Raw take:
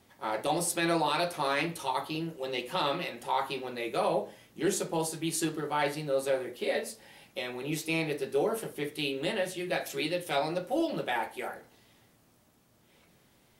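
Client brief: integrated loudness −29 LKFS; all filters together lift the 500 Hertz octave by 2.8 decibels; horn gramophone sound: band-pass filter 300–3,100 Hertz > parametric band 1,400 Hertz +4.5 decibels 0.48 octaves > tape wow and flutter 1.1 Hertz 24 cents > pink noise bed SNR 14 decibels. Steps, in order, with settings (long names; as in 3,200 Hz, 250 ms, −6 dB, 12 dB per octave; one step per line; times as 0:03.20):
band-pass filter 300–3,100 Hz
parametric band 500 Hz +4 dB
parametric band 1,400 Hz +4.5 dB 0.48 octaves
tape wow and flutter 1.1 Hz 24 cents
pink noise bed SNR 14 dB
level +1.5 dB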